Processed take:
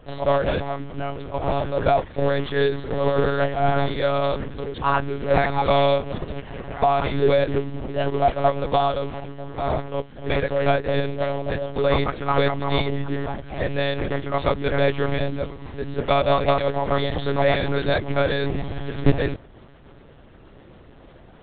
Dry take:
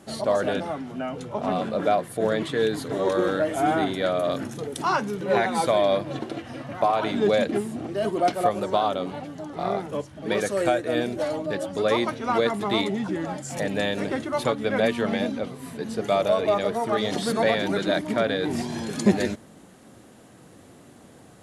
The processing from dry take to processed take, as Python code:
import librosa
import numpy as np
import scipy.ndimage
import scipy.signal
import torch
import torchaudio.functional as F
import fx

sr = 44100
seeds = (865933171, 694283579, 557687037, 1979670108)

y = fx.quant_float(x, sr, bits=2)
y = fx.lpc_monotone(y, sr, seeds[0], pitch_hz=140.0, order=10)
y = F.gain(torch.from_numpy(y), 3.0).numpy()